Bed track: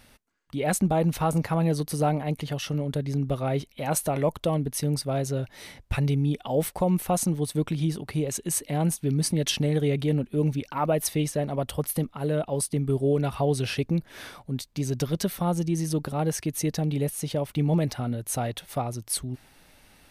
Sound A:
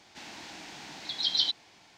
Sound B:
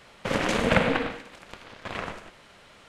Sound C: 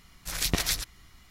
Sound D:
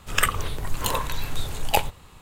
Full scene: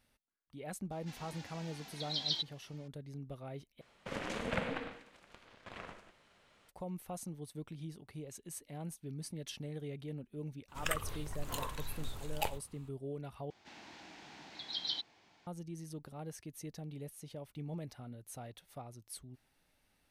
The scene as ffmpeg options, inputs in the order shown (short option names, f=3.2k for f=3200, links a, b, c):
-filter_complex "[1:a]asplit=2[a][b];[0:a]volume=-19dB[c];[a]asplit=2[d][e];[e]adelay=2.7,afreqshift=-2.8[f];[d][f]amix=inputs=2:normalize=1[g];[b]highshelf=f=4.5k:g=-9.5[h];[c]asplit=3[i][j][k];[i]atrim=end=3.814[l];[2:a]atrim=end=2.88,asetpts=PTS-STARTPTS,volume=-14.5dB[m];[j]atrim=start=6.686:end=13.504[n];[h]atrim=end=1.97,asetpts=PTS-STARTPTS,volume=-7dB[o];[k]atrim=start=15.466[p];[g]atrim=end=1.97,asetpts=PTS-STARTPTS,volume=-5dB,afade=t=in:d=0.004:c=hsin,afade=t=out:st=1.966:d=0.004:c=hsin,adelay=910[q];[4:a]atrim=end=2.21,asetpts=PTS-STARTPTS,volume=-14.5dB,afade=t=in:d=0.004:c=hsin,afade=t=out:st=2.206:d=0.004:c=hsin,adelay=10680[r];[l][m]acrossfade=d=0.004:c1=hsin:c2=hsin[s];[s][n]acrossfade=d=0.004:c1=hsin:c2=hsin[t];[t][o]acrossfade=d=0.004:c1=hsin:c2=hsin[u];[u][p]acrossfade=d=0.004:c1=hsin:c2=hsin[v];[v][q][r]amix=inputs=3:normalize=0"